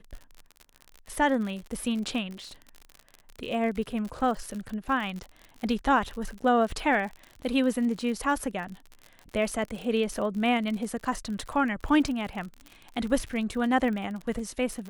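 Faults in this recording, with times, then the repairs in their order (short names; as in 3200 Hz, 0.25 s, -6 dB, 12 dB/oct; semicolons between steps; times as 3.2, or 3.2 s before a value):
crackle 52/s -34 dBFS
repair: de-click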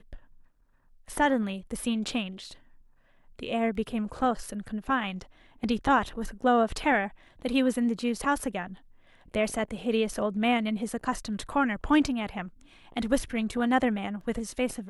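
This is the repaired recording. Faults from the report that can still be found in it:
none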